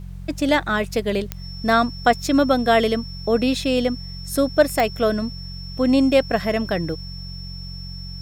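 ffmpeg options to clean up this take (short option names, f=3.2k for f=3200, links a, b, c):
-af "adeclick=t=4,bandreject=f=45.1:t=h:w=4,bandreject=f=90.2:t=h:w=4,bandreject=f=135.3:t=h:w=4,bandreject=f=180.4:t=h:w=4,bandreject=f=5.4k:w=30,agate=range=-21dB:threshold=-26dB"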